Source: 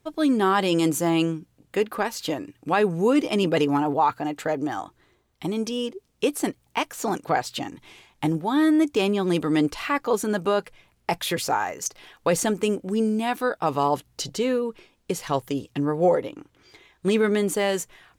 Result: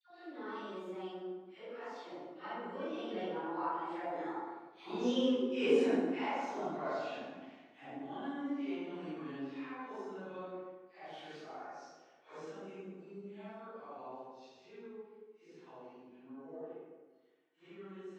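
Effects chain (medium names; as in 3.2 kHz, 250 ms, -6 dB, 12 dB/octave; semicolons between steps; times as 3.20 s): phase randomisation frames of 200 ms; Doppler pass-by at 5.36 s, 37 m/s, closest 9.1 m; high-pass 250 Hz 12 dB/octave; in parallel at +1 dB: compression, threshold -49 dBFS, peak gain reduction 24 dB; on the sum: distance through air 200 m; phase dispersion lows, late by 108 ms, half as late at 1.2 kHz; on a send at -3.5 dB: reverberation RT60 1.3 s, pre-delay 63 ms; on the sum: trim -1 dB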